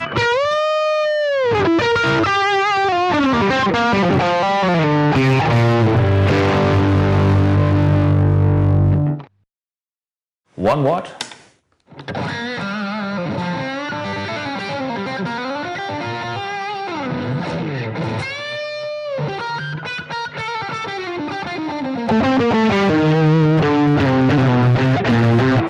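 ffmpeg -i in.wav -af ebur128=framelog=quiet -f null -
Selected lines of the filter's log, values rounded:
Integrated loudness:
  I:         -17.3 LUFS
  Threshold: -27.6 LUFS
Loudness range:
  LRA:         9.3 LU
  Threshold: -38.1 LUFS
  LRA low:   -24.1 LUFS
  LRA high:  -14.8 LUFS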